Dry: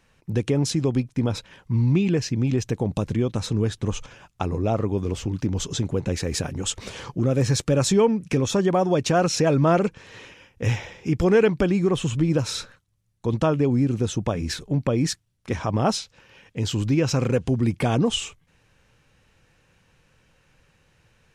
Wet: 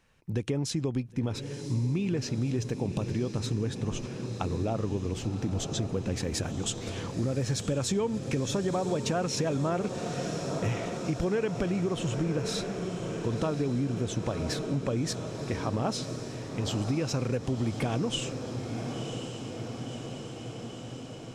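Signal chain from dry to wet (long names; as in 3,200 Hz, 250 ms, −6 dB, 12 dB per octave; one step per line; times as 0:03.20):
feedback delay with all-pass diffusion 1,033 ms, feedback 72%, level −10 dB
downward compressor 5 to 1, threshold −20 dBFS, peak gain reduction 7.5 dB
level −5 dB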